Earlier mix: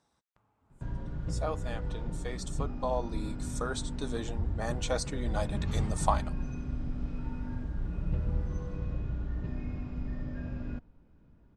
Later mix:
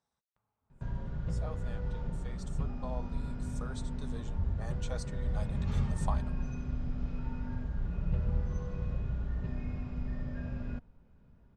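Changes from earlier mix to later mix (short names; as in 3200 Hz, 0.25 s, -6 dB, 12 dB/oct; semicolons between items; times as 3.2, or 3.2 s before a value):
speech -11.0 dB; master: add bell 310 Hz -14 dB 0.2 oct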